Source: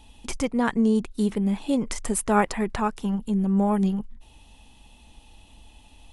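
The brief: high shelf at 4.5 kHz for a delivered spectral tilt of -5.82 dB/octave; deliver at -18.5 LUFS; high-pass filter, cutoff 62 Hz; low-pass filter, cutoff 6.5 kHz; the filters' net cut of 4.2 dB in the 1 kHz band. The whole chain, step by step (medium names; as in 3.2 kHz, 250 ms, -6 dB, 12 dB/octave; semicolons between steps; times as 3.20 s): high-pass 62 Hz; low-pass 6.5 kHz; peaking EQ 1 kHz -5 dB; treble shelf 4.5 kHz -7 dB; trim +7 dB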